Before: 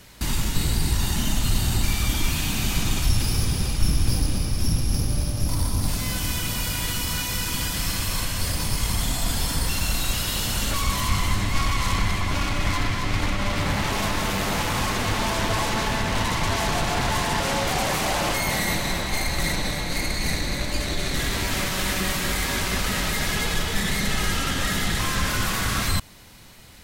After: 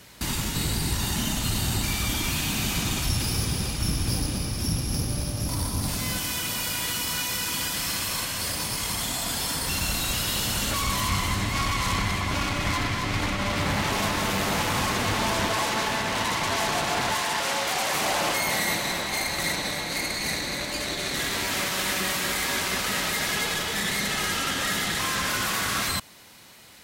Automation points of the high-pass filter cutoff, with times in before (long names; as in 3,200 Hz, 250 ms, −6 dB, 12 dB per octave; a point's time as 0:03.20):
high-pass filter 6 dB per octave
110 Hz
from 0:06.20 300 Hz
from 0:09.67 93 Hz
from 0:15.49 300 Hz
from 0:17.14 710 Hz
from 0:17.95 320 Hz